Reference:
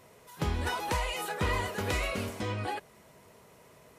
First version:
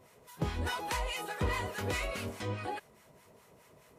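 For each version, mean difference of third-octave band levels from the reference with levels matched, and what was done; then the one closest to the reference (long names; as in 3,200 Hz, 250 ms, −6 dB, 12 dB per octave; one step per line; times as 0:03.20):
2.5 dB: two-band tremolo in antiphase 4.8 Hz, depth 70%, crossover 900 Hz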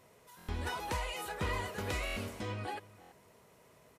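1.5 dB: slap from a distant wall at 57 metres, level −19 dB
buffer that repeats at 0:00.37/0:02.05/0:03.00, samples 1,024, times 4
level −5.5 dB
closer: second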